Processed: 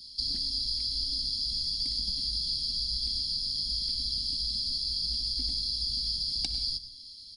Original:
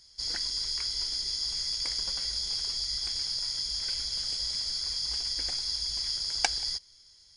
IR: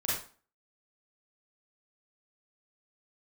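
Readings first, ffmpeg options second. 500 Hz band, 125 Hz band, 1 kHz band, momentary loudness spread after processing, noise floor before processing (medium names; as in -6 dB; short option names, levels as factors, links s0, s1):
no reading, +6.5 dB, under -20 dB, 1 LU, -58 dBFS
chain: -filter_complex "[0:a]firequalizer=gain_entry='entry(140,0);entry(260,12);entry(390,-10);entry(1400,-23);entry(4200,11);entry(6400,-12);entry(9600,2)':delay=0.05:min_phase=1,acrossover=split=200[s0][s1];[s1]acompressor=threshold=0.0141:ratio=4[s2];[s0][s2]amix=inputs=2:normalize=0,asplit=2[s3][s4];[1:a]atrim=start_sample=2205,adelay=59[s5];[s4][s5]afir=irnorm=-1:irlink=0,volume=0.126[s6];[s3][s6]amix=inputs=2:normalize=0,volume=2"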